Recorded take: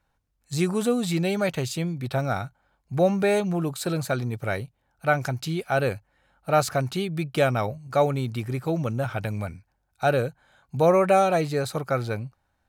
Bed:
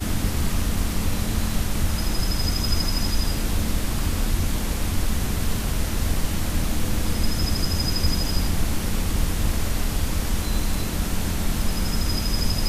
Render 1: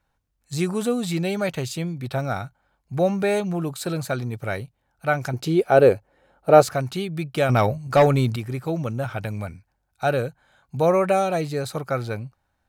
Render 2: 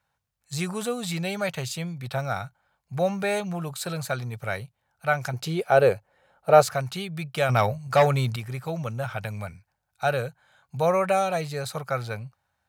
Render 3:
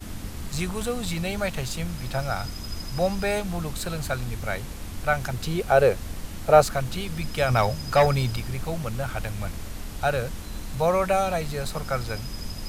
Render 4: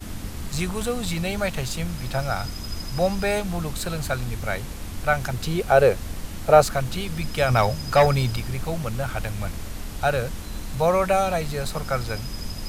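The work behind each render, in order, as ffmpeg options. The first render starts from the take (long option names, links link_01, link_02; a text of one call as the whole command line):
ffmpeg -i in.wav -filter_complex "[0:a]asettb=1/sr,asplit=3[link_01][link_02][link_03];[link_01]atrim=end=5.334[link_04];[link_02]atrim=start=5.33:end=6.68,asetpts=PTS-STARTPTS,afade=type=in:duration=0.004:curve=qsin,afade=type=out:start_time=1.346:duration=0.004:curve=qsin,equalizer=frequency=430:width_type=o:width=1.6:gain=13.5[link_05];[link_03]atrim=start=6.676[link_06];[link_04][link_05]acrossfade=duration=0.004:curve1=hsin:curve2=qsin[link_07];[link_07][link_06]acrossfade=duration=0.004:curve1=qsin:curve2=hsin,asettb=1/sr,asplit=3[link_08][link_09][link_10];[link_08]atrim=end=7.494[link_11];[link_09]atrim=start=7.49:end=8.36,asetpts=PTS-STARTPTS,afade=type=in:duration=0.004:curve=qsin,afade=type=out:start_time=0.866:duration=0.004:curve=qsin,aeval=exprs='0.335*sin(PI/2*1.58*val(0)/0.335)':channel_layout=same[link_12];[link_10]atrim=start=8.356[link_13];[link_11][link_12]acrossfade=duration=0.004:curve1=hsin:curve2=qsin[link_14];[link_14][link_13]acrossfade=duration=0.004:curve1=qsin:curve2=hsin,asettb=1/sr,asplit=3[link_15][link_16][link_17];[link_15]atrim=end=11.124[link_18];[link_16]atrim=start=11.12:end=11.66,asetpts=PTS-STARTPTS,afade=type=in:duration=0.004:curve=qsin,afade=type=out:start_time=0.536:duration=0.004:curve=qsin,equalizer=frequency=1200:width_type=o:width=2.1:gain=-3[link_19];[link_17]atrim=start=11.656[link_20];[link_18][link_19]acrossfade=duration=0.004:curve1=hsin:curve2=qsin[link_21];[link_21][link_20]acrossfade=duration=0.004:curve1=qsin:curve2=hsin" out.wav
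ffmpeg -i in.wav -af "highpass=98,equalizer=frequency=300:width_type=o:width=0.92:gain=-14" out.wav
ffmpeg -i in.wav -i bed.wav -filter_complex "[1:a]volume=-11.5dB[link_01];[0:a][link_01]amix=inputs=2:normalize=0" out.wav
ffmpeg -i in.wav -af "volume=2dB,alimiter=limit=-2dB:level=0:latency=1" out.wav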